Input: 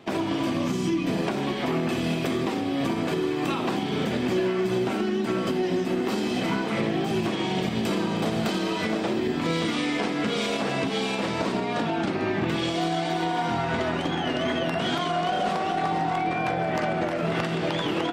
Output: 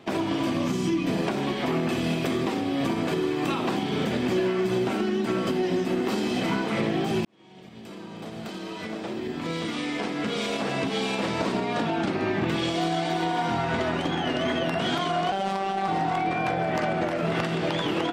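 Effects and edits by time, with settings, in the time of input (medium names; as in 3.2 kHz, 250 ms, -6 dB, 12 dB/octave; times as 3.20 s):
7.25–11.21 s: fade in
15.32–15.88 s: robot voice 194 Hz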